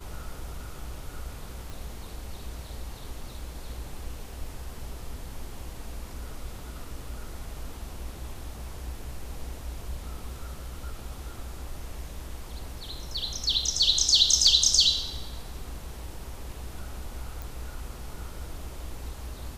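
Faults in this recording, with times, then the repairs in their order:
1.70 s: pop
17.42 s: pop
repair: de-click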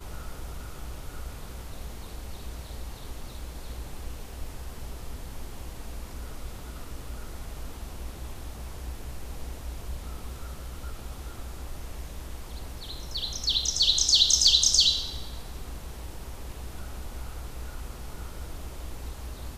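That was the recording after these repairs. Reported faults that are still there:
nothing left

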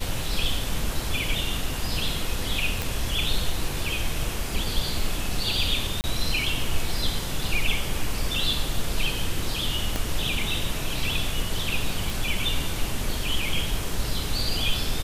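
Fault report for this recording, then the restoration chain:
2.82 s: pop
6.01–6.04 s: dropout 29 ms
9.96 s: pop
12.10 s: pop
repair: de-click; interpolate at 6.01 s, 29 ms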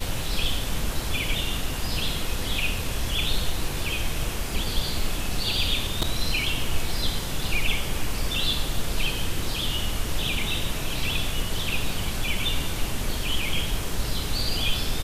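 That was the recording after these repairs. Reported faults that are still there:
9.96 s: pop

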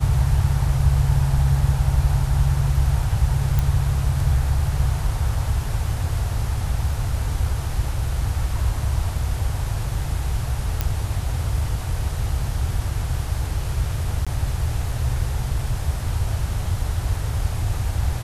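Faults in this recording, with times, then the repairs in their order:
3.59 s: pop
10.81 s: pop -6 dBFS
14.25–14.27 s: dropout 16 ms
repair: de-click; interpolate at 14.25 s, 16 ms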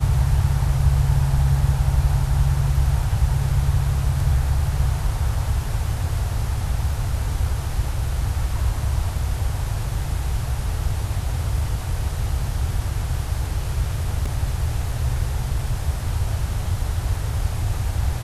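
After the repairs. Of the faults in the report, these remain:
nothing left

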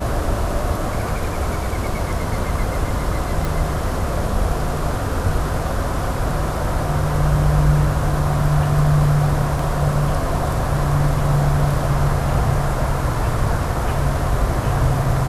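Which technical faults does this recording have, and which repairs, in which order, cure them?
3.45 s: pop
9.59 s: dropout 3.5 ms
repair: de-click; interpolate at 9.59 s, 3.5 ms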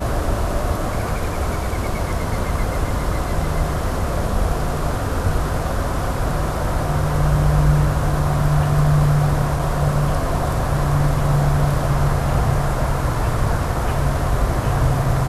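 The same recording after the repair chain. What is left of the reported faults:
nothing left

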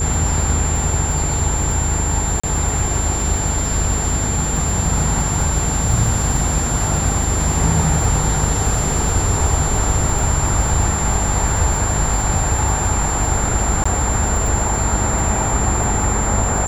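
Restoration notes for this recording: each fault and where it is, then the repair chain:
buzz 50 Hz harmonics 9 -23 dBFS
crackle 52 per s -24 dBFS
whine 7.3 kHz -22 dBFS
2.40–2.44 s: dropout 35 ms
13.84–13.86 s: dropout 15 ms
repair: de-click; de-hum 50 Hz, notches 9; band-stop 7.3 kHz, Q 30; interpolate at 2.40 s, 35 ms; interpolate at 13.84 s, 15 ms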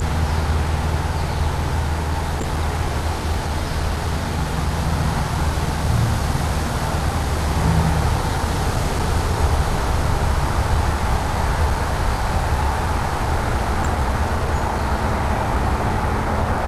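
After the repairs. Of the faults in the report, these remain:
nothing left

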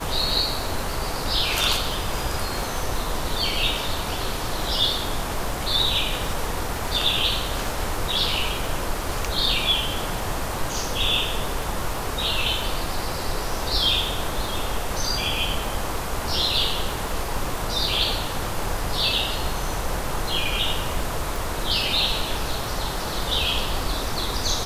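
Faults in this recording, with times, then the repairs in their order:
crackle 45 per s -31 dBFS
21.36 s: pop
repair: de-click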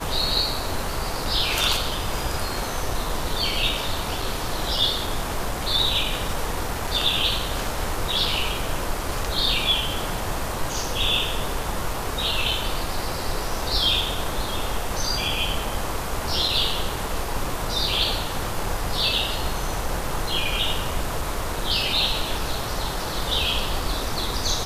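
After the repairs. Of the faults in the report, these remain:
nothing left

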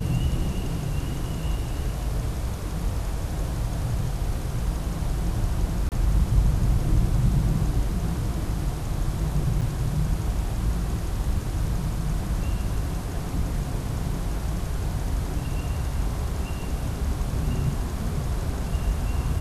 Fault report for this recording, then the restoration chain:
5.89–5.92 s: dropout 28 ms
9.61–9.62 s: dropout 6.1 ms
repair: interpolate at 5.89 s, 28 ms; interpolate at 9.61 s, 6.1 ms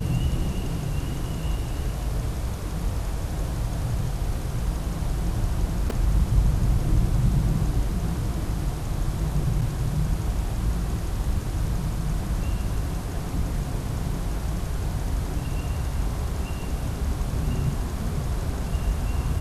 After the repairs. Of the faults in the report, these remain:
nothing left

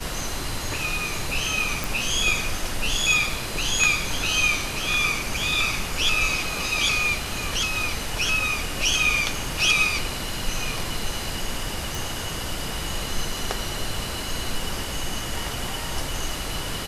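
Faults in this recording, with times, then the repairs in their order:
1.84 s: pop
11.95 s: pop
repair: de-click

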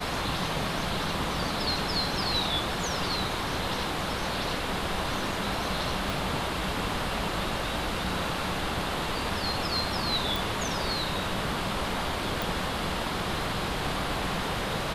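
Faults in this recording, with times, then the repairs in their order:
6.10 s: pop
10.36 s: pop
12.42 s: pop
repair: de-click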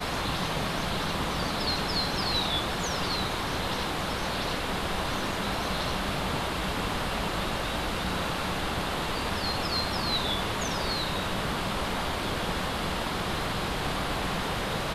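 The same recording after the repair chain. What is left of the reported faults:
6.10 s: pop

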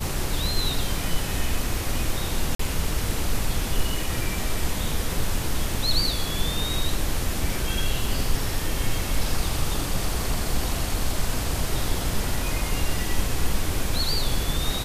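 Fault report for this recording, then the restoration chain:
2.55–2.59 s: dropout 44 ms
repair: interpolate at 2.55 s, 44 ms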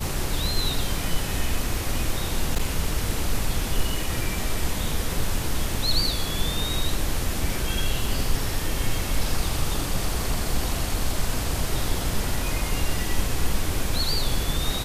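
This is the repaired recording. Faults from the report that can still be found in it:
nothing left

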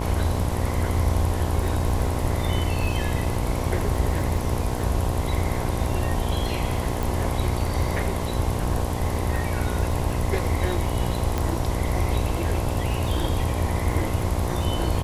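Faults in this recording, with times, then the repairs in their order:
buzz 60 Hz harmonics 18 -29 dBFS
crackle 37 per s -32 dBFS
7.03 s: pop
11.38 s: pop -12 dBFS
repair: de-click; de-hum 60 Hz, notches 18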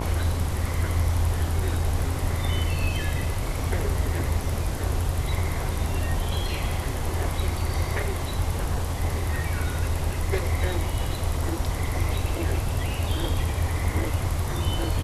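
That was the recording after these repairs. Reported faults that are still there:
11.38 s: pop

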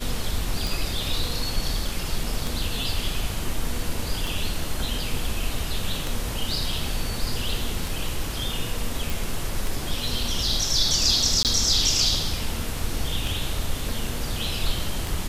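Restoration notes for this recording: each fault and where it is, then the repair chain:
tick 33 1/3 rpm
9.10 s: pop
11.43–11.45 s: dropout 18 ms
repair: de-click; interpolate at 11.43 s, 18 ms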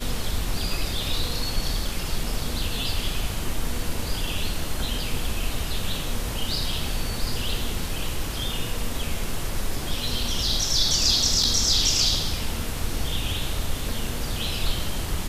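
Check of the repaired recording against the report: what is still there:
nothing left

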